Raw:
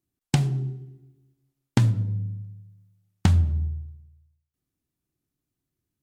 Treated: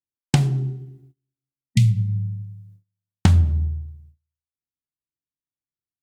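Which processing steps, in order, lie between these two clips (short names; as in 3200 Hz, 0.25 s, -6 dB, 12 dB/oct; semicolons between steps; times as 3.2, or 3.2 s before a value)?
spectral repair 1.72–2.65, 230–1900 Hz before; gate -52 dBFS, range -25 dB; gain +4 dB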